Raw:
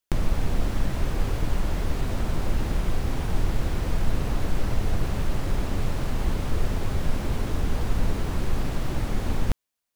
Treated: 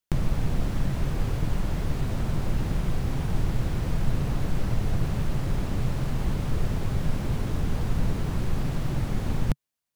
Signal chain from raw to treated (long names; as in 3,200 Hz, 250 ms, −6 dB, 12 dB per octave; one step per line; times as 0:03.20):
parametric band 140 Hz +8.5 dB 0.95 octaves
level −3 dB